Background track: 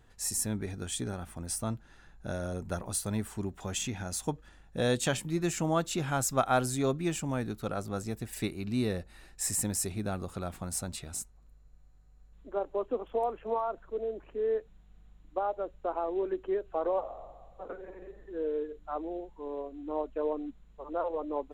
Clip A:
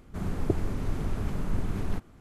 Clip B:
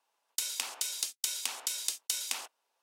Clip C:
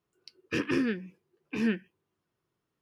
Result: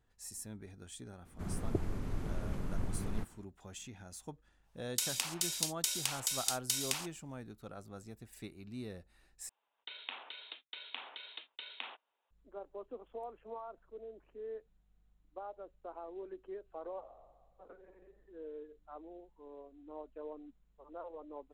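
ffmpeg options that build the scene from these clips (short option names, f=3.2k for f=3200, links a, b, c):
-filter_complex "[2:a]asplit=2[a][b];[0:a]volume=-14dB[c];[b]aresample=8000,aresample=44100[d];[c]asplit=2[e][f];[e]atrim=end=9.494[g];[d]atrim=end=2.82,asetpts=PTS-STARTPTS,volume=-4dB[h];[f]atrim=start=12.306[i];[1:a]atrim=end=2.2,asetpts=PTS-STARTPTS,volume=-7.5dB,afade=t=in:d=0.004:c=hsin,afade=t=out:st=2.196:d=0.004:c=hsin,adelay=1250[j];[a]atrim=end=2.82,asetpts=PTS-STARTPTS,volume=-1dB,afade=t=in:d=0.1,afade=t=out:st=2.72:d=0.1,adelay=4600[k];[g][h]acrossfade=d=0.004:c1=hsin:c2=hsin[l];[l][i]acrossfade=d=0.004:c1=hsin:c2=hsin[m];[m][j][k]amix=inputs=3:normalize=0"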